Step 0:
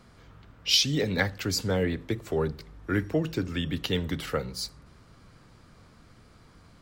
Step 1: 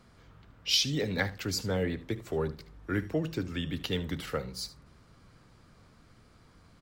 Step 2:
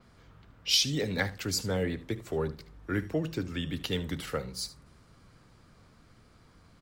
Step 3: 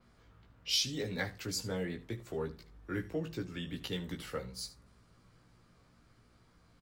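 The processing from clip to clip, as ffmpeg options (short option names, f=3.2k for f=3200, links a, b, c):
-af "aecho=1:1:74:0.15,volume=-4dB"
-af "adynamicequalizer=threshold=0.00251:dfrequency=9300:dqfactor=1:tfrequency=9300:tqfactor=1:attack=5:release=100:ratio=0.375:range=3:mode=boostabove:tftype=bell"
-filter_complex "[0:a]asplit=2[a][b];[b]adelay=17,volume=-4dB[c];[a][c]amix=inputs=2:normalize=0,volume=-7.5dB"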